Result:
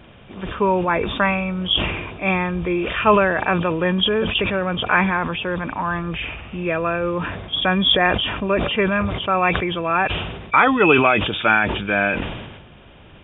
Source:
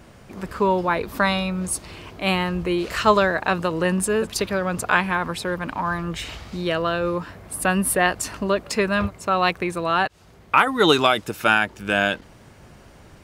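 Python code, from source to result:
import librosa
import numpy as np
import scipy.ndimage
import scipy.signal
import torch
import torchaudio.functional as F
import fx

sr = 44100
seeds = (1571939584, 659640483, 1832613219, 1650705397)

y = fx.freq_compress(x, sr, knee_hz=2300.0, ratio=4.0)
y = fx.sustainer(y, sr, db_per_s=44.0)
y = y * librosa.db_to_amplitude(1.0)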